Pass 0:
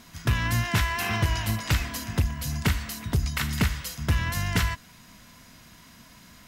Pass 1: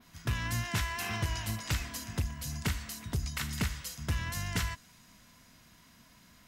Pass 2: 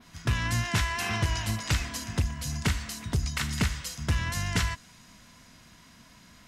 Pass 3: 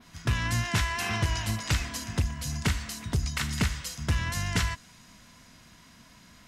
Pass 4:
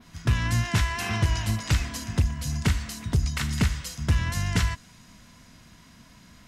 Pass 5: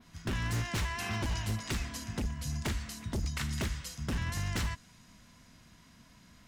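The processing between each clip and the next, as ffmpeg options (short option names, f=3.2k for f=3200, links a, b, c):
-af "adynamicequalizer=threshold=0.00501:dfrequency=7400:dqfactor=0.8:tfrequency=7400:tqfactor=0.8:attack=5:release=100:ratio=0.375:range=2.5:mode=boostabove:tftype=bell,volume=-8.5dB"
-af "lowpass=10k,volume=5.5dB"
-af anull
-af "lowshelf=f=320:g=5"
-af "aeval=exprs='0.1*(abs(mod(val(0)/0.1+3,4)-2)-1)':c=same,volume=-6.5dB"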